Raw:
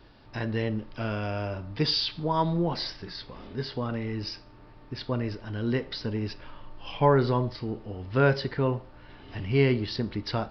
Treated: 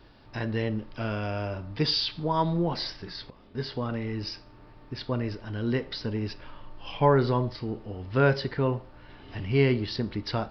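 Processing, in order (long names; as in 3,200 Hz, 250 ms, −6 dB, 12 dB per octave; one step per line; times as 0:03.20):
0:03.30–0:03.74: noise gate −40 dBFS, range −11 dB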